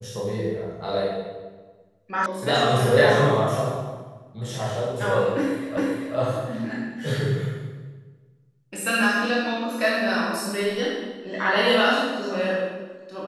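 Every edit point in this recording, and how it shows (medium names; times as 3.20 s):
2.26 s: sound stops dead
5.77 s: repeat of the last 0.39 s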